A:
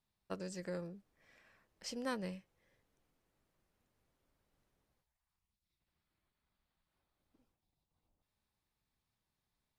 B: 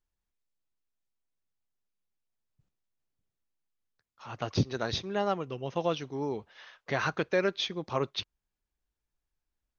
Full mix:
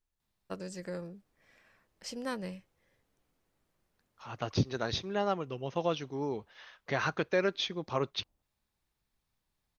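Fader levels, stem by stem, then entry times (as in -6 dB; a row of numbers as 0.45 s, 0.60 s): +2.5 dB, -1.5 dB; 0.20 s, 0.00 s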